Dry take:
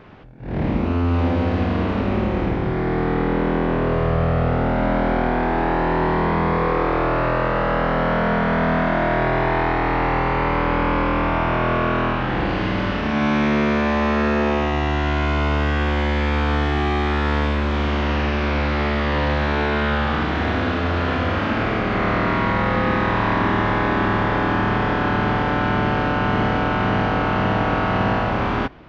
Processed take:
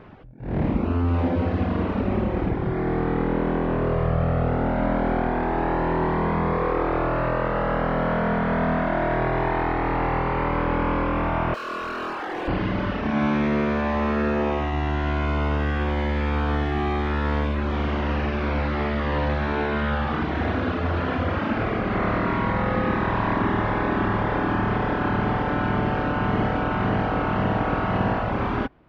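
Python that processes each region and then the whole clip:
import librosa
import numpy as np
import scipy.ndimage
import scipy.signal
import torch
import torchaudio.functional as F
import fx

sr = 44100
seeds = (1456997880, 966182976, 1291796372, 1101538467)

y = fx.chain(x, sr, fx.highpass(hz=330.0, slope=24),
    fx.clip_hard(threshold_db=-23.5),
    fx.doubler(ms=25.0, db=-8), at=(11.54, 12.48))
y = fx.dereverb_blind(y, sr, rt60_s=0.88)
y = fx.high_shelf(y, sr, hz=2300.0, db=-8.0)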